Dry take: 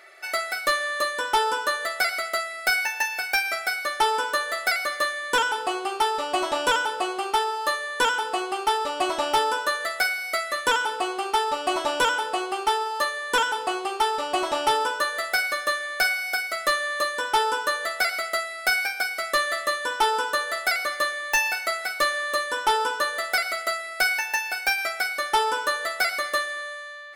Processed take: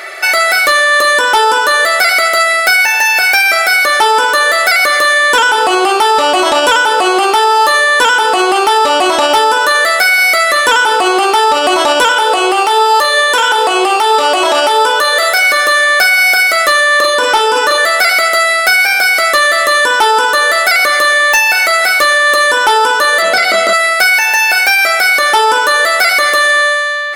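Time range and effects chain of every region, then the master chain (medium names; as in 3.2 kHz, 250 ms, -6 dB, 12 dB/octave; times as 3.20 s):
12.08–15.51 s: high-pass 300 Hz + flutter echo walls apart 5.5 m, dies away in 0.21 s
16.97–17.78 s: treble shelf 9.3 kHz -6.5 dB + doubling 36 ms -4 dB
23.22–23.73 s: low-pass 8 kHz + peaking EQ 180 Hz +14 dB 2 oct + doubling 20 ms -2 dB
whole clip: bass shelf 150 Hz -10 dB; loudness maximiser +25.5 dB; trim -1.5 dB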